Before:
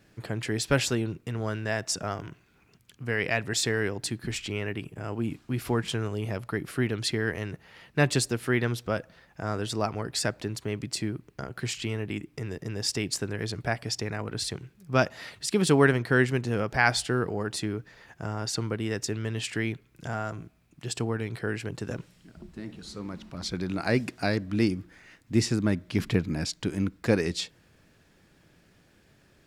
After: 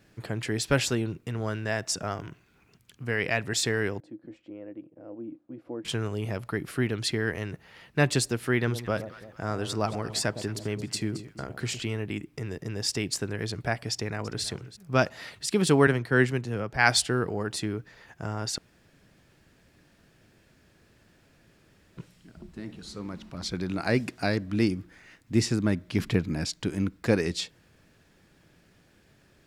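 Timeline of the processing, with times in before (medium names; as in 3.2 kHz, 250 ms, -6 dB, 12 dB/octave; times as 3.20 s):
4.00–5.85 s: two resonant band-passes 410 Hz, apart 0.7 oct
8.56–11.83 s: echo whose repeats swap between lows and highs 111 ms, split 880 Hz, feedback 60%, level -10 dB
13.91–14.43 s: echo throw 330 ms, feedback 10%, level -16.5 dB
15.87–17.02 s: three bands expanded up and down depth 70%
18.58–21.97 s: room tone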